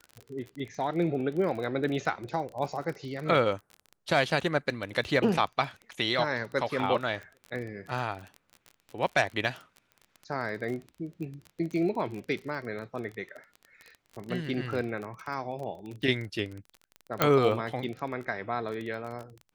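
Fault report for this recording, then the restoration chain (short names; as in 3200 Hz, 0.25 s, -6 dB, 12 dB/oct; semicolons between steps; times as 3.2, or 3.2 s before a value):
crackle 28/s -35 dBFS
17.22 pop -8 dBFS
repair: de-click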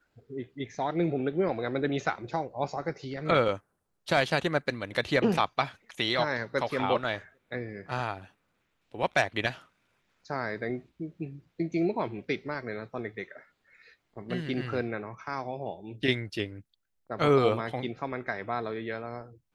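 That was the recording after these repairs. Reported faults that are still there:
none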